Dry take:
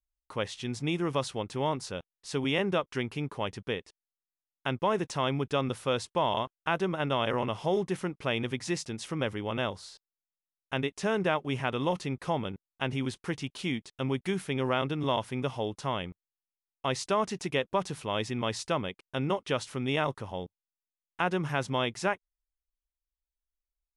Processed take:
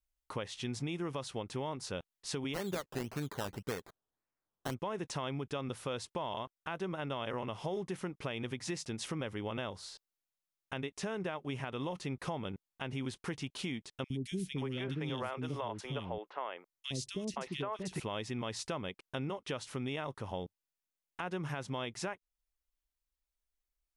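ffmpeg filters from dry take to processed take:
ffmpeg -i in.wav -filter_complex "[0:a]asplit=3[link_01][link_02][link_03];[link_01]afade=type=out:start_time=2.53:duration=0.02[link_04];[link_02]acrusher=samples=16:mix=1:aa=0.000001:lfo=1:lforange=9.6:lforate=1.8,afade=type=in:start_time=2.53:duration=0.02,afade=type=out:start_time=4.73:duration=0.02[link_05];[link_03]afade=type=in:start_time=4.73:duration=0.02[link_06];[link_04][link_05][link_06]amix=inputs=3:normalize=0,asettb=1/sr,asplit=3[link_07][link_08][link_09];[link_07]atrim=end=14.044[link_10];[link_08]atrim=start=14.04:end=18,asetpts=PTS-STARTPTS,afade=type=in:duration=0.004:curve=qsin,afade=type=out:start_time=3.956:duration=0.004:curve=qsin,acrossover=split=390|2700[link_11][link_12][link_13];[link_11]adelay=60[link_14];[link_12]adelay=520[link_15];[link_14][link_15][link_13]amix=inputs=3:normalize=0,atrim=end_sample=174636[link_16];[link_09]atrim=start=17.996[link_17];[link_10][link_16]acrossfade=duration=0.004:curve1=hsin:curve2=qsin[link_18];[link_18][link_17]acrossfade=duration=0.004:curve1=qsin:curve2=hsin,alimiter=level_in=0.5dB:limit=-24dB:level=0:latency=1:release=376,volume=-0.5dB,acompressor=threshold=-37dB:ratio=2.5,volume=1.5dB" out.wav

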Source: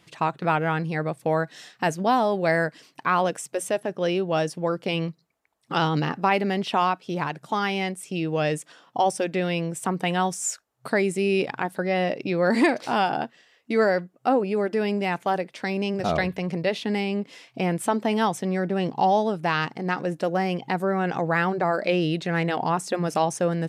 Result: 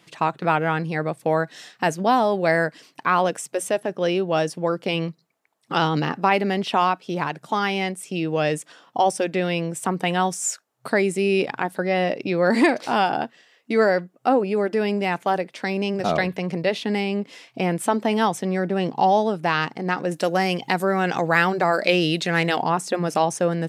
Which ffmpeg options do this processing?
ffmpeg -i in.wav -filter_complex "[0:a]asettb=1/sr,asplit=3[link_01][link_02][link_03];[link_01]atrim=end=20.114[link_04];[link_02]atrim=start=20.11:end=22.62,asetpts=PTS-STARTPTS,afade=type=in:duration=0.004:curve=qsin,afade=type=out:start_time=2.506:duration=0.004:curve=qsin,highshelf=frequency=2500:gain=10.5[link_05];[link_03]atrim=start=22.616[link_06];[link_04][link_05]acrossfade=duration=0.004:curve1=hsin:curve2=qsin[link_07];[link_07][link_06]acrossfade=duration=0.004:curve1=qsin:curve2=hsin,highpass=140,volume=2.5dB" out.wav

